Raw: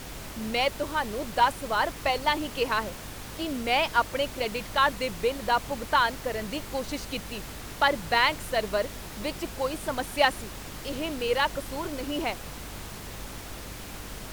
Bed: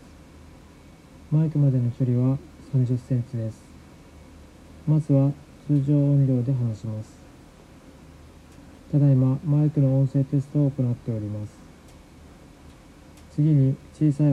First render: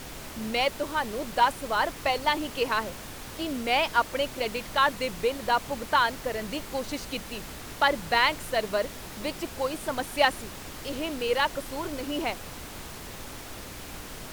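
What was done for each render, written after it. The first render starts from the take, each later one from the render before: de-hum 50 Hz, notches 4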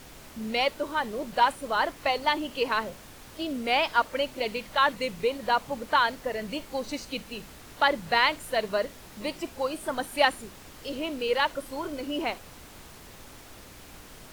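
noise print and reduce 7 dB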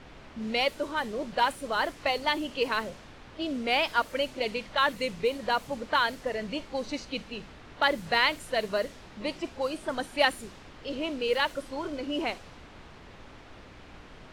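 low-pass opened by the level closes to 2800 Hz, open at -22 dBFS; dynamic EQ 940 Hz, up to -4 dB, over -34 dBFS, Q 1.4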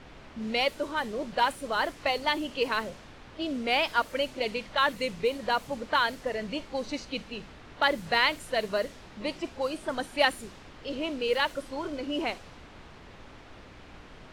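nothing audible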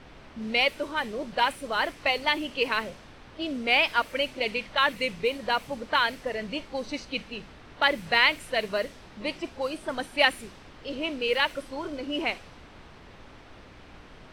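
notch 6900 Hz, Q 15; dynamic EQ 2400 Hz, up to +7 dB, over -43 dBFS, Q 1.8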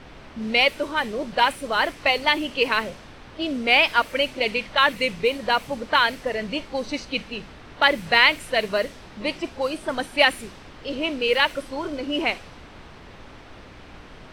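gain +5 dB; limiter -2 dBFS, peak gain reduction 2.5 dB

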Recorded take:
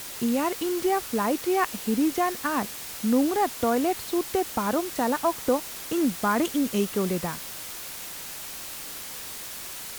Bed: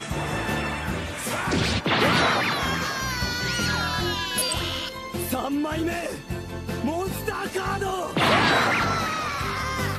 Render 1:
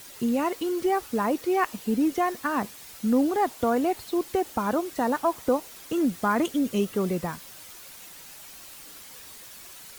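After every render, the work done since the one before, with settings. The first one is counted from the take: denoiser 9 dB, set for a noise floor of -38 dBFS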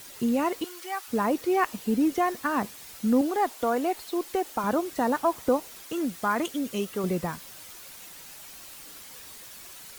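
0.64–1.08 HPF 1100 Hz; 3.21–4.64 bell 97 Hz -15 dB 1.9 oct; 5.82–7.04 low shelf 470 Hz -7 dB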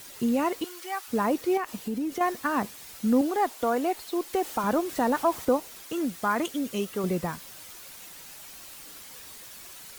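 1.57–2.21 compressor 5:1, threshold -27 dBFS; 4.33–5.45 zero-crossing step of -40.5 dBFS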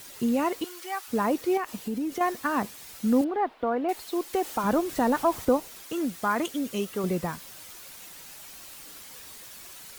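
3.24–3.89 air absorption 400 m; 4.65–5.68 low shelf 150 Hz +7.5 dB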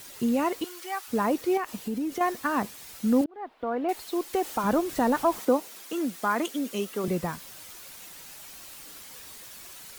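3.26–3.87 fade in; 5.38–7.08 HPF 190 Hz 24 dB/oct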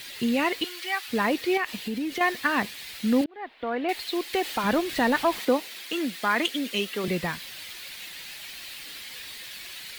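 band shelf 2800 Hz +11.5 dB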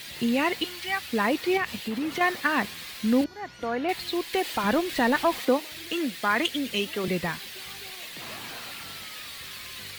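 add bed -23 dB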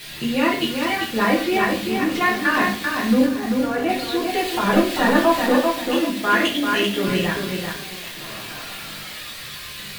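shoebox room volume 46 m³, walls mixed, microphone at 0.91 m; lo-fi delay 0.39 s, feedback 35%, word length 6-bit, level -4 dB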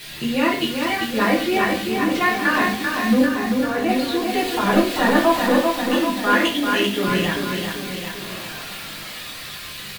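echo 0.784 s -9.5 dB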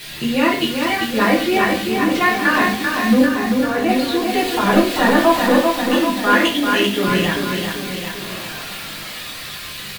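gain +3 dB; limiter -1 dBFS, peak gain reduction 2 dB

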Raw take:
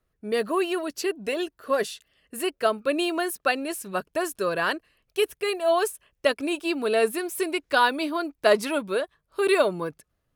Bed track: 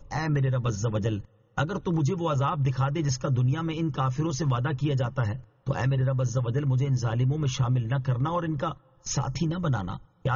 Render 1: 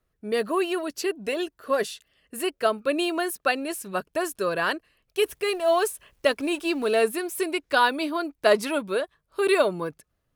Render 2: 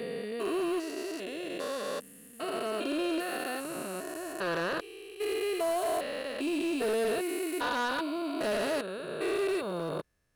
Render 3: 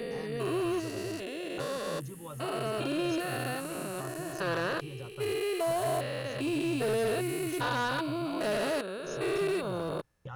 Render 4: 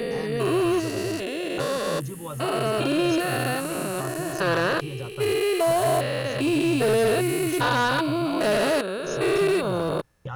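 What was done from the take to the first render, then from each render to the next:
5.21–7.03 G.711 law mismatch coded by mu
stepped spectrum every 0.4 s; hard clip -26 dBFS, distortion -16 dB
add bed track -17 dB
gain +8.5 dB

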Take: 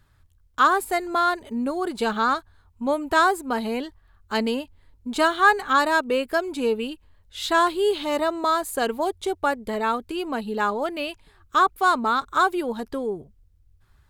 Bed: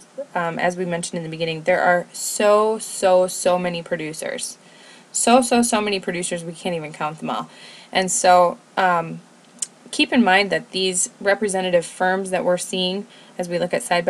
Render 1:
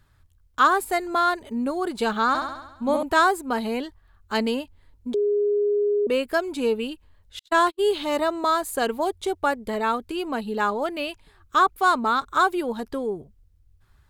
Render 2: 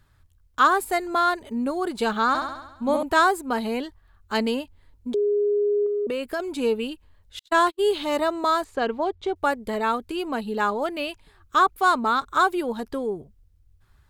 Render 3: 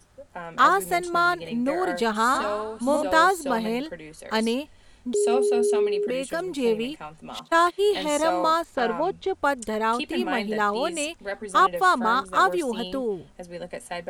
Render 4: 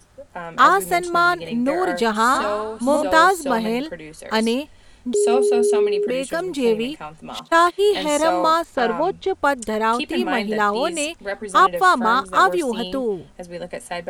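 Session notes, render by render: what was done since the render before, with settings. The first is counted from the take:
2.28–3.03 flutter echo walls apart 11.6 m, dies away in 0.9 s; 5.14–6.07 bleep 412 Hz -18.5 dBFS; 7.39–7.94 gate -25 dBFS, range -52 dB
5.86–6.4 compressor, threshold -23 dBFS; 8.64–9.36 air absorption 170 m
add bed -14 dB
gain +4.5 dB

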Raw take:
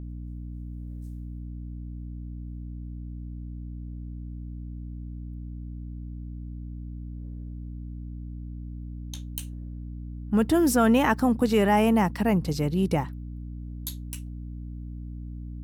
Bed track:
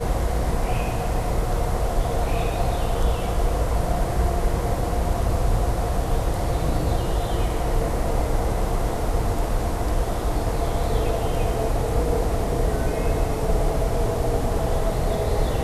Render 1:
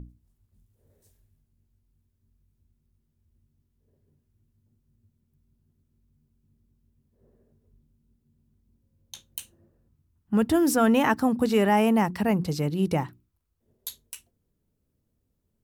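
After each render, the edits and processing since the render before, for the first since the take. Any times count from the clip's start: notches 60/120/180/240/300/360 Hz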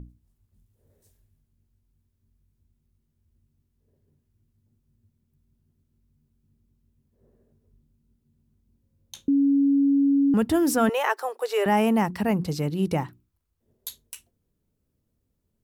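9.28–10.34 bleep 279 Hz -16.5 dBFS; 10.89–11.66 Chebyshev high-pass 390 Hz, order 6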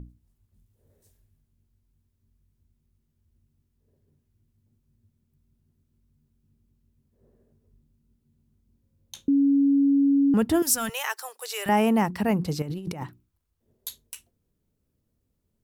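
10.62–11.69 EQ curve 140 Hz 0 dB, 300 Hz -18 dB, 6600 Hz +8 dB; 12.62–13.02 negative-ratio compressor -34 dBFS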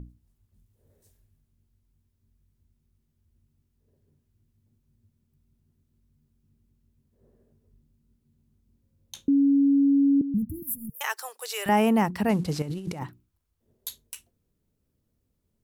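10.21–11.01 inverse Chebyshev band-stop 950–3600 Hz, stop band 80 dB; 12.29–12.99 CVSD 64 kbps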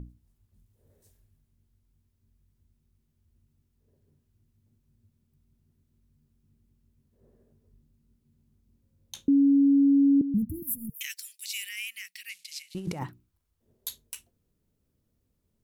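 10.94–12.75 elliptic high-pass 2200 Hz, stop band 60 dB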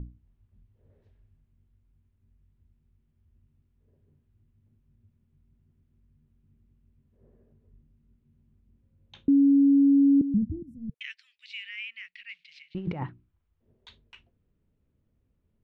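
LPF 3000 Hz 24 dB/oct; low shelf 150 Hz +4.5 dB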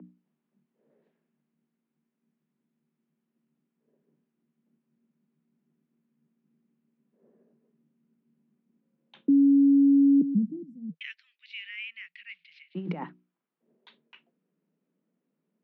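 low-pass opened by the level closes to 2700 Hz, open at -22 dBFS; steep high-pass 160 Hz 96 dB/oct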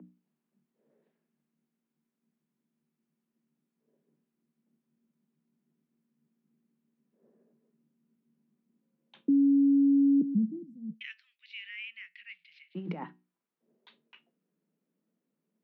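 resonator 110 Hz, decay 0.24 s, harmonics all, mix 40%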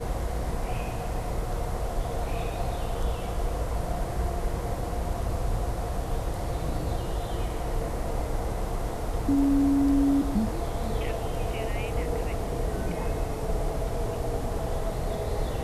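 add bed track -7 dB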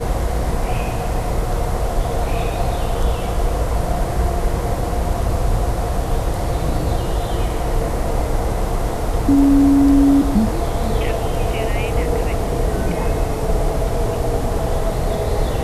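gain +10 dB

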